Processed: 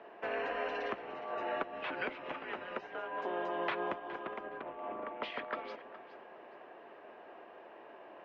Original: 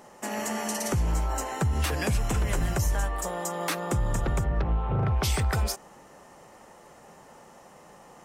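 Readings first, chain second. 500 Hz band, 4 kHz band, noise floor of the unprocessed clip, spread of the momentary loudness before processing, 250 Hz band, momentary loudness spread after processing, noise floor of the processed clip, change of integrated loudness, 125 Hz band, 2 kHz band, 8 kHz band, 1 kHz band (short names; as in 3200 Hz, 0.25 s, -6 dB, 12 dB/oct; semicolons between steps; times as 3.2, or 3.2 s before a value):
-4.5 dB, -12.0 dB, -52 dBFS, 5 LU, -13.0 dB, 17 LU, -54 dBFS, -11.0 dB, -35.0 dB, -4.5 dB, under -40 dB, -5.5 dB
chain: compressor, threshold -29 dBFS, peak gain reduction 7.5 dB; on a send: echo with dull and thin repeats by turns 0.208 s, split 820 Hz, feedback 51%, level -10 dB; on the sum: mistuned SSB -170 Hz 530–3300 Hz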